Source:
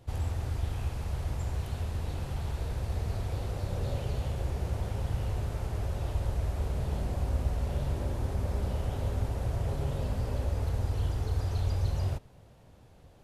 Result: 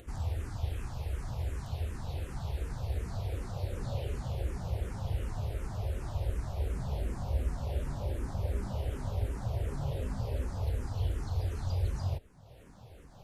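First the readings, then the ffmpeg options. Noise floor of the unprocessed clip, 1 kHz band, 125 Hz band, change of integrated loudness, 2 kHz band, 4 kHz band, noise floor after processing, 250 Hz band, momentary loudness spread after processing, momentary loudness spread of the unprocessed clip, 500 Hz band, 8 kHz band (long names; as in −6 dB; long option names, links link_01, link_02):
−56 dBFS, −3.0 dB, −3.0 dB, −3.0 dB, −3.0 dB, −3.0 dB, −54 dBFS, −3.0 dB, 4 LU, 4 LU, −3.0 dB, −3.0 dB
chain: -filter_complex "[0:a]acompressor=mode=upward:threshold=-41dB:ratio=2.5,asplit=2[link_01][link_02];[link_02]afreqshift=-2.7[link_03];[link_01][link_03]amix=inputs=2:normalize=1"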